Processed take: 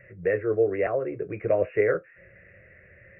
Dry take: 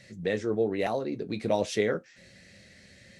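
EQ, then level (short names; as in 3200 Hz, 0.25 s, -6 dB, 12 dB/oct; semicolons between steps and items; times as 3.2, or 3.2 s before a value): brick-wall FIR low-pass 2900 Hz; fixed phaser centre 870 Hz, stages 6; +5.5 dB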